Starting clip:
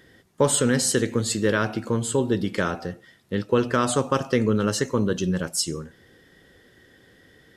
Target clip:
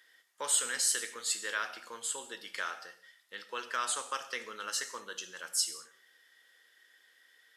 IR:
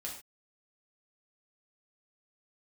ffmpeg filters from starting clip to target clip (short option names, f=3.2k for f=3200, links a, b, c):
-filter_complex "[0:a]highpass=1.3k,asplit=2[a][b];[1:a]atrim=start_sample=2205,asetrate=30429,aresample=44100,highshelf=f=7.3k:g=8.5[c];[b][c]afir=irnorm=-1:irlink=0,volume=-9.5dB[d];[a][d]amix=inputs=2:normalize=0,volume=-7.5dB"